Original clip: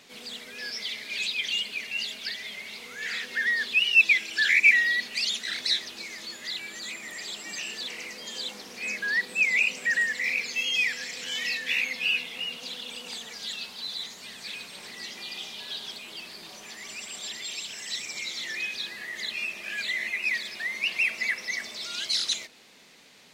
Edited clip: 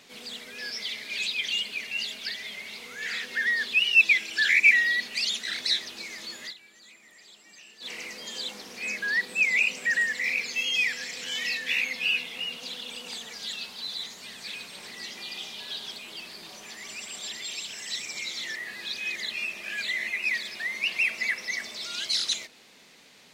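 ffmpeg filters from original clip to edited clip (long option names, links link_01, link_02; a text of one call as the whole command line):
ffmpeg -i in.wav -filter_complex "[0:a]asplit=5[link_01][link_02][link_03][link_04][link_05];[link_01]atrim=end=6.54,asetpts=PTS-STARTPTS,afade=type=out:start_time=6.41:duration=0.13:curve=qsin:silence=0.16788[link_06];[link_02]atrim=start=6.54:end=7.8,asetpts=PTS-STARTPTS,volume=-15.5dB[link_07];[link_03]atrim=start=7.8:end=18.562,asetpts=PTS-STARTPTS,afade=type=in:duration=0.13:curve=qsin:silence=0.16788[link_08];[link_04]atrim=start=18.558:end=19.162,asetpts=PTS-STARTPTS,areverse[link_09];[link_05]atrim=start=19.158[link_10];[link_06][link_07][link_08]concat=n=3:v=0:a=1[link_11];[link_11][link_09]acrossfade=duration=0.004:curve1=hsin:curve2=hsin[link_12];[link_12][link_10]acrossfade=duration=0.004:curve1=hsin:curve2=hsin" out.wav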